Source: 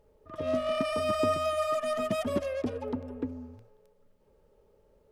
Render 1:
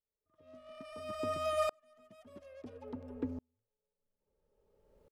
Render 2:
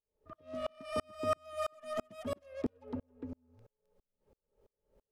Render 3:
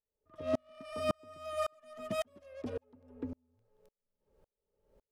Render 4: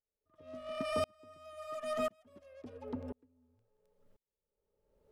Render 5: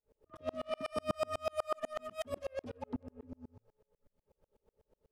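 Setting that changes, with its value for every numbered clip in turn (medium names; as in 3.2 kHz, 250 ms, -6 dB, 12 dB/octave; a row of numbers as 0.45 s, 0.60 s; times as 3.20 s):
sawtooth tremolo in dB, rate: 0.59 Hz, 3 Hz, 1.8 Hz, 0.96 Hz, 8.1 Hz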